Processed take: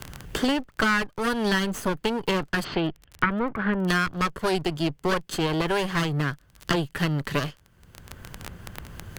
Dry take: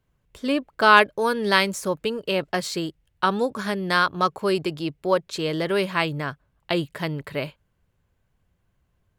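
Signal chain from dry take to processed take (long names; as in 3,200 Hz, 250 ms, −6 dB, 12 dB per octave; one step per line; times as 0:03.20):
lower of the sound and its delayed copy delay 0.64 ms
0:02.63–0:03.87: low-pass filter 3,600 Hz → 1,600 Hz 24 dB per octave
surface crackle 22 per second −43 dBFS
multiband upward and downward compressor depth 100%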